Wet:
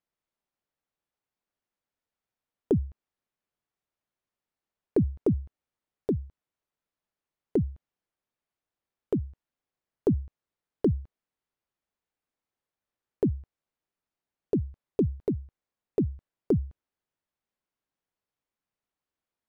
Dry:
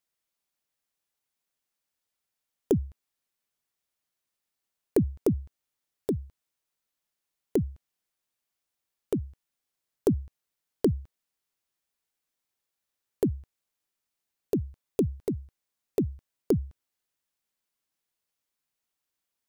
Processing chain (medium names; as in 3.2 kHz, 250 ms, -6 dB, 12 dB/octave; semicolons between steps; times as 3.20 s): low-pass 1.2 kHz 6 dB/octave; in parallel at +1 dB: peak limiter -20.5 dBFS, peak gain reduction 7 dB; on the sum: trim -4.5 dB